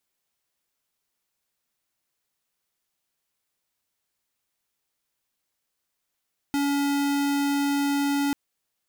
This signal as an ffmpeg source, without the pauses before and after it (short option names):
-f lavfi -i "aevalsrc='0.0631*(2*lt(mod(283*t,1),0.5)-1)':d=1.79:s=44100"